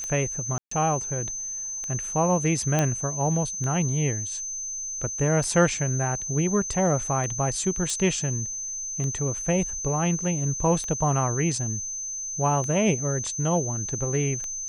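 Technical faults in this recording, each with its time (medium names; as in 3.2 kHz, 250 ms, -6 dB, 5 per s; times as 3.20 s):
tick 33 1/3 rpm -20 dBFS
whine 6.2 kHz -30 dBFS
0.58–0.71 s: dropout 134 ms
2.79 s: pop -9 dBFS
7.90 s: pop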